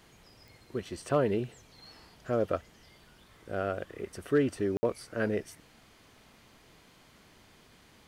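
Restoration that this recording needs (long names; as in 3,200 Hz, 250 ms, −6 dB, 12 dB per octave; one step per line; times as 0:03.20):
clipped peaks rebuilt −16.5 dBFS
click removal
ambience match 0:04.77–0:04.83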